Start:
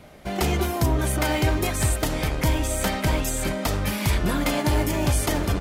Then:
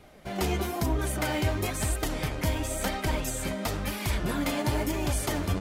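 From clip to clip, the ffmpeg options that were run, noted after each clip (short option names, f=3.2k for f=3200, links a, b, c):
-af "flanger=delay=2.4:depth=8.8:regen=39:speed=1:shape=sinusoidal,volume=-1.5dB"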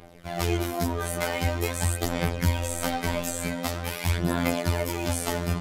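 -af "afftfilt=real='hypot(re,im)*cos(PI*b)':imag='0':win_size=2048:overlap=0.75,aphaser=in_gain=1:out_gain=1:delay=5:decay=0.39:speed=0.45:type=sinusoidal,volume=4.5dB"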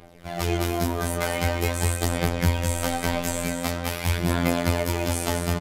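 -af "aecho=1:1:209:0.473"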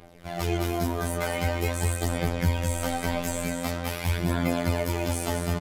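-af "acontrast=51,volume=-7.5dB"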